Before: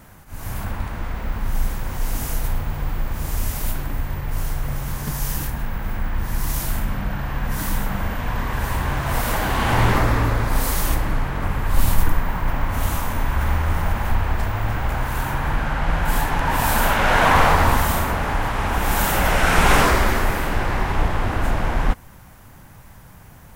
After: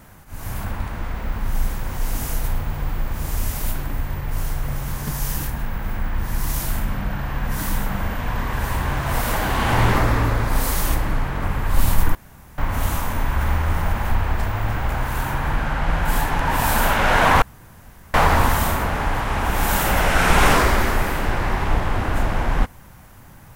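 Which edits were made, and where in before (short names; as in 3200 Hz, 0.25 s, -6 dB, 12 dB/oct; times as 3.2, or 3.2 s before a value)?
12.15–12.58 room tone
17.42 insert room tone 0.72 s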